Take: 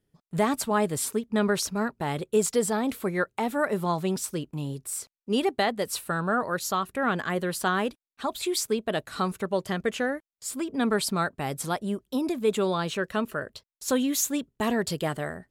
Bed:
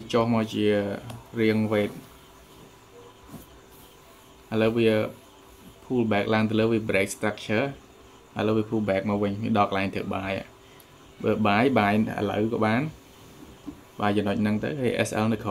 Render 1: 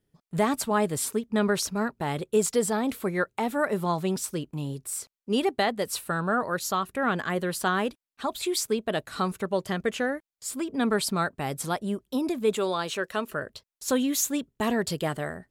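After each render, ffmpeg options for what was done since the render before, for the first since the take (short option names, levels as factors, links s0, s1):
-filter_complex "[0:a]asettb=1/sr,asplit=3[s0][s1][s2];[s0]atrim=end=12.564[s3];[s1]atrim=start=12.56:end=13.3,asetpts=PTS-STARTPTS,afade=t=in:d=0.004:c=qsin,afade=t=out:st=0.736:d=0.004:c=qsin,bass=f=250:g=-10,treble=f=4000:g=3[s4];[s2]atrim=start=13.296[s5];[s3][s4]acrossfade=d=0.004:c1=hsin:c2=qsin[s6];[s6][s5]acrossfade=d=0.004:c1=qsin:c2=hsin"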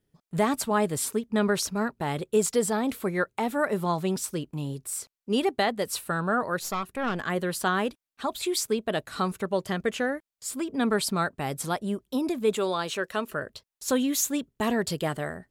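-filter_complex "[0:a]asettb=1/sr,asplit=3[s0][s1][s2];[s0]atrim=end=6.604[s3];[s1]atrim=start=6.6:end=7.22,asetpts=PTS-STARTPTS,afade=t=in:d=0.004:c=qsin,afade=t=out:st=0.616:d=0.004:c=qsin,aeval=exprs='(tanh(11.2*val(0)+0.55)-tanh(0.55))/11.2':c=same[s4];[s2]atrim=start=7.216[s5];[s3][s4]acrossfade=d=0.004:c1=hsin:c2=qsin[s6];[s6][s5]acrossfade=d=0.004:c1=qsin:c2=hsin"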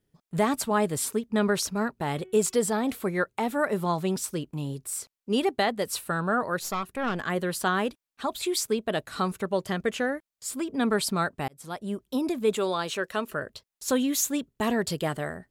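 -filter_complex "[0:a]asettb=1/sr,asplit=3[s0][s1][s2];[s0]atrim=end=2.054[s3];[s1]atrim=start=2.05:end=2.95,asetpts=PTS-STARTPTS,afade=t=in:d=0.004:c=qsin,afade=t=out:st=0.896:d=0.004:c=qsin,bandreject=f=372.3:t=h:w=4,bandreject=f=744.6:t=h:w=4,bandreject=f=1116.9:t=h:w=4,bandreject=f=1489.2:t=h:w=4,bandreject=f=1861.5:t=h:w=4,bandreject=f=2233.8:t=h:w=4,bandreject=f=2606.1:t=h:w=4,bandreject=f=2978.4:t=h:w=4,bandreject=f=3350.7:t=h:w=4[s4];[s2]atrim=start=2.946[s5];[s3][s4]acrossfade=d=0.004:c1=hsin:c2=qsin[s6];[s6][s5]acrossfade=d=0.004:c1=qsin:c2=hsin,asplit=2[s7][s8];[s7]atrim=end=11.48,asetpts=PTS-STARTPTS,afade=t=out:st=11.476:d=0.004:c=hsin[s9];[s8]atrim=start=11.48,asetpts=PTS-STARTPTS,afade=t=in:d=0.56[s10];[s9][s10]concat=n=2:v=0:a=1"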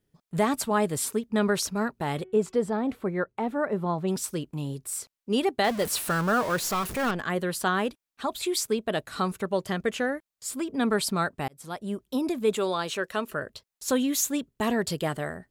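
-filter_complex "[0:a]asplit=3[s0][s1][s2];[s0]afade=t=out:st=2.23:d=0.02[s3];[s1]lowpass=f=1100:p=1,afade=t=in:st=2.23:d=0.02,afade=t=out:st=4.07:d=0.02[s4];[s2]afade=t=in:st=4.07:d=0.02[s5];[s3][s4][s5]amix=inputs=3:normalize=0,asettb=1/sr,asplit=3[s6][s7][s8];[s6]atrim=end=5.644[s9];[s7]atrim=start=5.64:end=7.11,asetpts=PTS-STARTPTS,afade=t=in:d=0.004:c=qsin,afade=t=out:st=1.466:d=0.004:c=qsin,aeval=exprs='val(0)+0.5*0.0299*sgn(val(0))':c=same[s10];[s8]atrim=start=7.106[s11];[s9][s10]acrossfade=d=0.004:c1=hsin:c2=qsin[s12];[s12][s11]acrossfade=d=0.004:c1=qsin:c2=hsin"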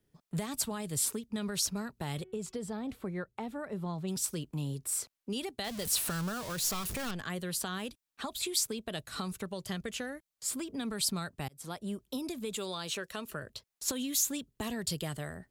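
-filter_complex "[0:a]alimiter=limit=0.133:level=0:latency=1,acrossover=split=150|3000[s0][s1][s2];[s1]acompressor=threshold=0.0126:ratio=6[s3];[s0][s3][s2]amix=inputs=3:normalize=0"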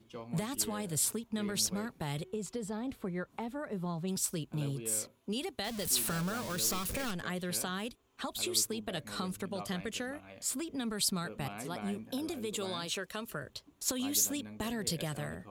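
-filter_complex "[1:a]volume=0.0708[s0];[0:a][s0]amix=inputs=2:normalize=0"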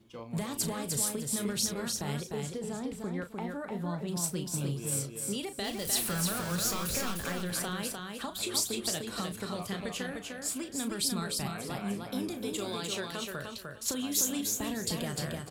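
-filter_complex "[0:a]asplit=2[s0][s1];[s1]adelay=35,volume=0.335[s2];[s0][s2]amix=inputs=2:normalize=0,aecho=1:1:302|604|906:0.631|0.139|0.0305"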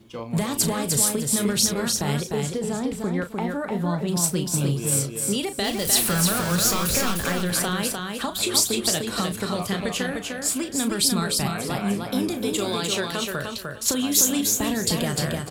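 -af "volume=3.16"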